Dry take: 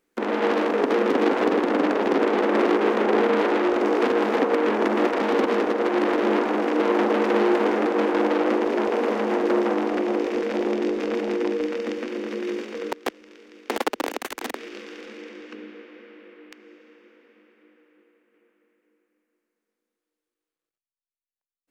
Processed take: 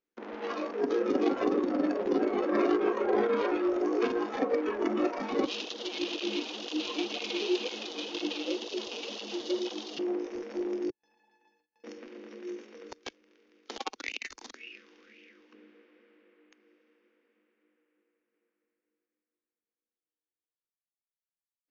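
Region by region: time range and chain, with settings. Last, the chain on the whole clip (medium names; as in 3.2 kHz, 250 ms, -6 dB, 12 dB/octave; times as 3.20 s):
5.45–9.99 s: resonant high shelf 2.4 kHz +11 dB, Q 1.5 + cancelling through-zero flanger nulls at 2 Hz, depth 6.2 ms
10.90–11.84 s: high-pass 99 Hz 6 dB/octave + feedback comb 870 Hz, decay 0.22 s, mix 100% + gate with hold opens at -44 dBFS, closes at -51 dBFS
13.89–15.54 s: peaking EQ 950 Hz -11.5 dB 2.1 oct + sweeping bell 1.9 Hz 900–2700 Hz +15 dB
whole clip: spectral noise reduction 12 dB; steep low-pass 6.8 kHz 96 dB/octave; trim -4.5 dB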